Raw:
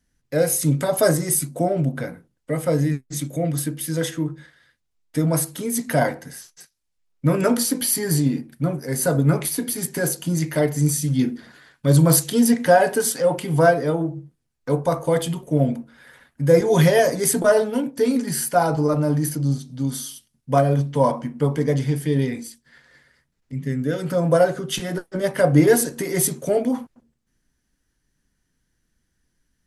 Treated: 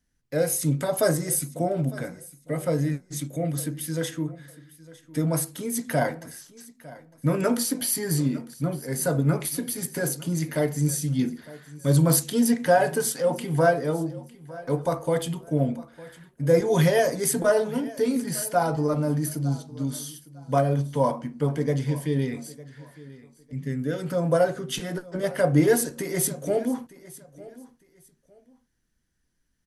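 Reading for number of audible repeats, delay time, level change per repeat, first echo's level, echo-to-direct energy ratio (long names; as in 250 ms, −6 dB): 2, 905 ms, −12.0 dB, −19.5 dB, −19.0 dB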